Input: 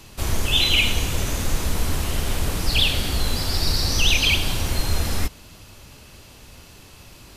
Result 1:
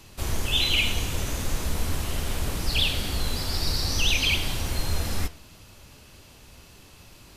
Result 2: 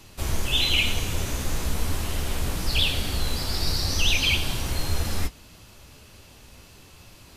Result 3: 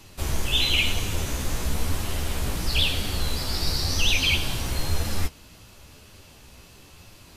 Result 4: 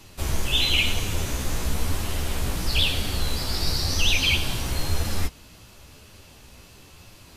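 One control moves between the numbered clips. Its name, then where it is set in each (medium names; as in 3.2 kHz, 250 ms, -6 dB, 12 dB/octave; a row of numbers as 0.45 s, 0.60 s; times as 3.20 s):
flange, regen: +85%, -36%, +29%, -5%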